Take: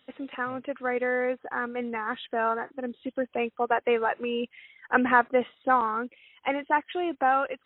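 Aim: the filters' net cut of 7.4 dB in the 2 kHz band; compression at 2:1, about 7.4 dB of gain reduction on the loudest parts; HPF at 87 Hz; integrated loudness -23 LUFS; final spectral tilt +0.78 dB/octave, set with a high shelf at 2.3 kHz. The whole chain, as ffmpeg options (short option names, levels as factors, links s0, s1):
-af "highpass=87,equalizer=f=2000:t=o:g=-9,highshelf=f=2300:g=-3,acompressor=threshold=0.0251:ratio=2,volume=3.76"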